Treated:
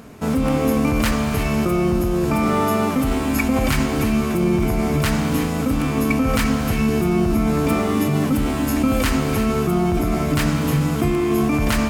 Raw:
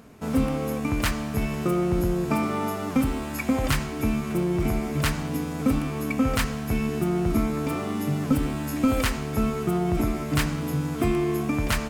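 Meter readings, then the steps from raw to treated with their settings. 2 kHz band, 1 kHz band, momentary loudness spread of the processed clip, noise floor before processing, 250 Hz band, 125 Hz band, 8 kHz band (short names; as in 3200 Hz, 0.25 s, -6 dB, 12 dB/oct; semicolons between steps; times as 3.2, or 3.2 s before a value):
+6.0 dB, +7.0 dB, 2 LU, -32 dBFS, +6.5 dB, +6.0 dB, +6.0 dB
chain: in parallel at +1.5 dB: negative-ratio compressor -26 dBFS, ratio -0.5; on the sum: non-linear reverb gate 0.38 s rising, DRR 7 dB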